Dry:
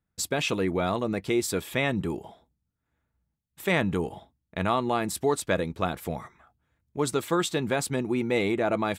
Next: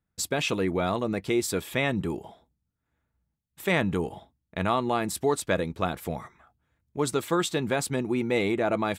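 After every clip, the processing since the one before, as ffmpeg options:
-af anull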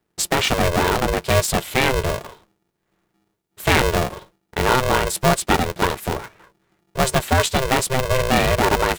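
-af "aeval=exprs='val(0)*sgn(sin(2*PI*260*n/s))':c=same,volume=8dB"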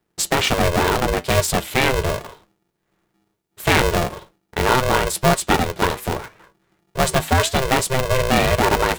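-af "flanger=delay=5.7:depth=3.7:regen=-81:speed=0.76:shape=sinusoidal,volume=5dB"

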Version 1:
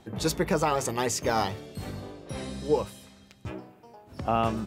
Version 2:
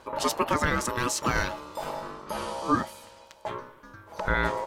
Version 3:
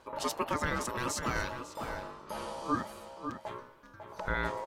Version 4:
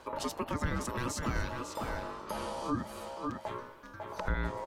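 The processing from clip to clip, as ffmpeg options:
-filter_complex "[0:a]asplit=2[a][b];[b]alimiter=limit=-21dB:level=0:latency=1:release=475,volume=-1dB[c];[a][c]amix=inputs=2:normalize=0,aeval=exprs='val(0)*sin(2*PI*740*n/s)':c=same"
-filter_complex "[0:a]asplit=2[a][b];[b]adelay=548.1,volume=-7dB,highshelf=f=4k:g=-12.3[c];[a][c]amix=inputs=2:normalize=0,volume=-7dB"
-filter_complex "[0:a]equalizer=f=150:t=o:w=0.32:g=-5,acrossover=split=260[a][b];[b]acompressor=threshold=-40dB:ratio=10[c];[a][c]amix=inputs=2:normalize=0,volume=5.5dB"

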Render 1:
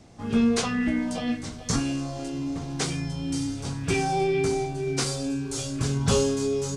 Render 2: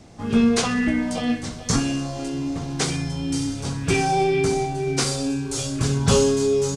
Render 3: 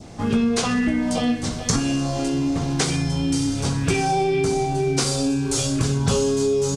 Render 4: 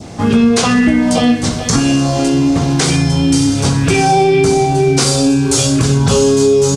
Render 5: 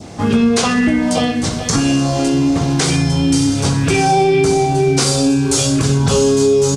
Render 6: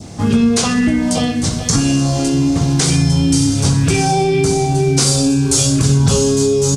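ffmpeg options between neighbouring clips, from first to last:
-af "aecho=1:1:63|126|189|252|315|378:0.2|0.112|0.0626|0.035|0.0196|0.011,volume=4.5dB"
-af "adynamicequalizer=threshold=0.00794:dfrequency=1900:dqfactor=1.6:tfrequency=1900:tqfactor=1.6:attack=5:release=100:ratio=0.375:range=2:mode=cutabove:tftype=bell,acompressor=threshold=-25dB:ratio=4,volume=6.5dB"
-af "highpass=50,alimiter=level_in=11dB:limit=-1dB:release=50:level=0:latency=1,volume=-1dB"
-af "bandreject=f=60:t=h:w=6,bandreject=f=120:t=h:w=6,bandreject=f=180:t=h:w=6,bandreject=f=240:t=h:w=6,volume=-2dB"
-af "bass=f=250:g=7,treble=f=4k:g=7,volume=-3.5dB"

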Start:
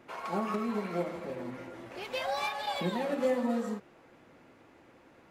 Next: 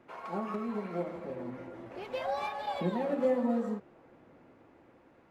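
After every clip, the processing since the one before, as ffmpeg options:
-filter_complex "[0:a]acrossover=split=950[a][b];[a]dynaudnorm=f=520:g=5:m=4dB[c];[b]highshelf=f=3k:g=-10[d];[c][d]amix=inputs=2:normalize=0,volume=-3dB"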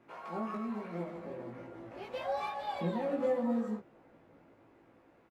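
-filter_complex "[0:a]asplit=2[a][b];[b]adelay=18,volume=-2dB[c];[a][c]amix=inputs=2:normalize=0,volume=-4.5dB"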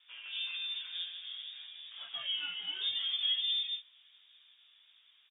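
-af "lowpass=f=3.2k:t=q:w=0.5098,lowpass=f=3.2k:t=q:w=0.6013,lowpass=f=3.2k:t=q:w=0.9,lowpass=f=3.2k:t=q:w=2.563,afreqshift=-3800,volume=-1.5dB"

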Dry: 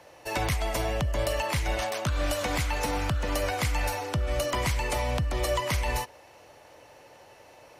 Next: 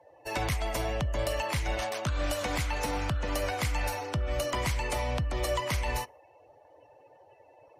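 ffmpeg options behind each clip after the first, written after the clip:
-af "afftdn=nr=21:nf=-50,volume=-2.5dB"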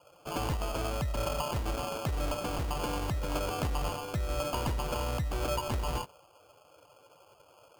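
-af "acrusher=samples=23:mix=1:aa=0.000001,volume=-2dB"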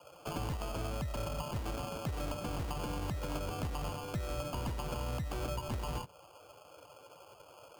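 -filter_complex "[0:a]acrossover=split=89|210[a][b][c];[a]acompressor=threshold=-46dB:ratio=4[d];[b]acompressor=threshold=-44dB:ratio=4[e];[c]acompressor=threshold=-43dB:ratio=4[f];[d][e][f]amix=inputs=3:normalize=0,volume=3.5dB"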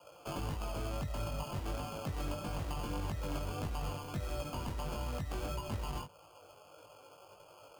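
-af "flanger=delay=19:depth=2.4:speed=1.6,volume=1.5dB"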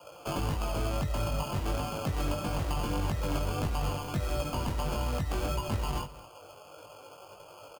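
-af "aecho=1:1:213:0.133,volume=7dB"

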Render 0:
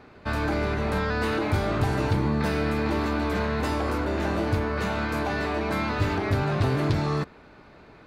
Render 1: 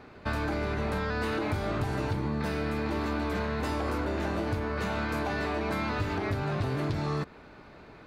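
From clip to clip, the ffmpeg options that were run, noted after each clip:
-af "acompressor=threshold=-27dB:ratio=6"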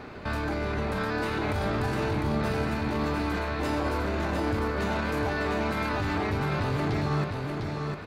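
-af "alimiter=level_in=6.5dB:limit=-24dB:level=0:latency=1:release=24,volume=-6.5dB,aecho=1:1:702|1404|2106|2808:0.631|0.196|0.0606|0.0188,volume=8dB"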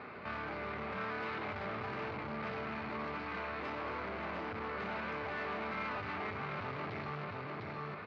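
-af "asoftclip=type=tanh:threshold=-31.5dB,highpass=130,equalizer=f=140:t=q:w=4:g=-4,equalizer=f=300:t=q:w=4:g=-7,equalizer=f=1.2k:t=q:w=4:g=6,equalizer=f=2.2k:t=q:w=4:g=6,equalizer=f=3.5k:t=q:w=4:g=-4,lowpass=f=4.1k:w=0.5412,lowpass=f=4.1k:w=1.3066,volume=-5dB"

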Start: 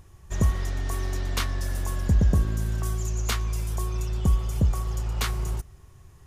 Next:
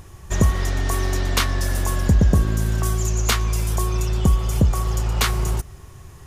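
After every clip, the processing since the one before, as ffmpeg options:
-filter_complex "[0:a]lowshelf=f=110:g=-4.5,asplit=2[a][b];[b]acompressor=threshold=-31dB:ratio=6,volume=1dB[c];[a][c]amix=inputs=2:normalize=0,volume=5dB"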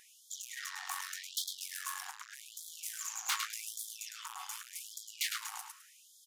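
-af "aecho=1:1:105|210|315:0.447|0.103|0.0236,asoftclip=type=tanh:threshold=-21dB,afftfilt=real='re*gte(b*sr/1024,710*pow(3200/710,0.5+0.5*sin(2*PI*0.85*pts/sr)))':imag='im*gte(b*sr/1024,710*pow(3200/710,0.5+0.5*sin(2*PI*0.85*pts/sr)))':win_size=1024:overlap=0.75,volume=-5.5dB"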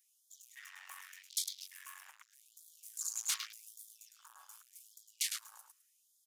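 -af "acrusher=bits=8:mode=log:mix=0:aa=0.000001,afwtdn=0.00562,aderivative,volume=3.5dB"

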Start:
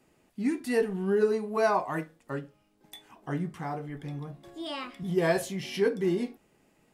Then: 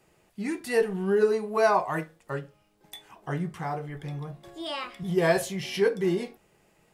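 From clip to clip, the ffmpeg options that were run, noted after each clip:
-af "equalizer=f=260:t=o:w=0.37:g=-13,volume=3.5dB"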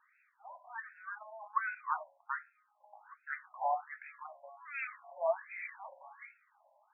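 -af "acompressor=threshold=-26dB:ratio=6,afftfilt=real='re*between(b*sr/1024,730*pow(1900/730,0.5+0.5*sin(2*PI*1.3*pts/sr))/1.41,730*pow(1900/730,0.5+0.5*sin(2*PI*1.3*pts/sr))*1.41)':imag='im*between(b*sr/1024,730*pow(1900/730,0.5+0.5*sin(2*PI*1.3*pts/sr))/1.41,730*pow(1900/730,0.5+0.5*sin(2*PI*1.3*pts/sr))*1.41)':win_size=1024:overlap=0.75,volume=2.5dB"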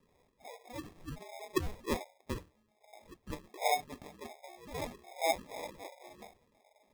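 -af "acrusher=samples=30:mix=1:aa=0.000001,volume=1dB"

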